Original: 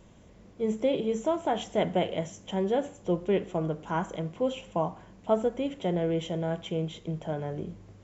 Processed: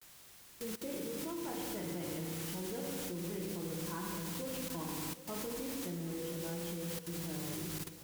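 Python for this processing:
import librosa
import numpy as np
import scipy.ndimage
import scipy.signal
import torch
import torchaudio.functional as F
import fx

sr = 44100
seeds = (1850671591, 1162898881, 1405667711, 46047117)

p1 = scipy.signal.sosfilt(scipy.signal.butter(2, 2100.0, 'lowpass', fs=sr, output='sos'), x)
p2 = fx.peak_eq(p1, sr, hz=660.0, db=-11.5, octaves=0.89)
p3 = fx.rev_fdn(p2, sr, rt60_s=1.5, lf_ratio=1.6, hf_ratio=0.95, size_ms=18.0, drr_db=-0.5)
p4 = fx.quant_dither(p3, sr, seeds[0], bits=6, dither='triangular')
p5 = fx.level_steps(p4, sr, step_db=17)
p6 = fx.vibrato(p5, sr, rate_hz=0.32, depth_cents=51.0)
p7 = p6 + fx.echo_split(p6, sr, split_hz=390.0, low_ms=269, high_ms=768, feedback_pct=52, wet_db=-14.5, dry=0)
y = p7 * 10.0 ** (-6.0 / 20.0)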